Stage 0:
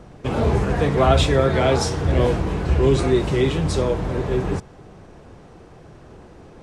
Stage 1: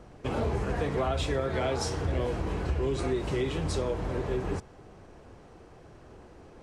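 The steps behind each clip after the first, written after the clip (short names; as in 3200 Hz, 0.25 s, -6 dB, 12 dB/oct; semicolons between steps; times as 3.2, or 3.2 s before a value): bell 160 Hz -4.5 dB 0.86 oct; notch 3600 Hz, Q 27; compressor, threshold -19 dBFS, peak gain reduction 8.5 dB; gain -6 dB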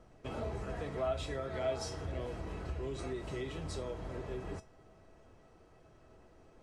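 resonator 650 Hz, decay 0.23 s, harmonics all, mix 80%; gain +2.5 dB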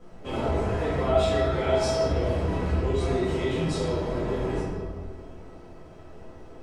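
reverb RT60 1.8 s, pre-delay 4 ms, DRR -11 dB; gain +1.5 dB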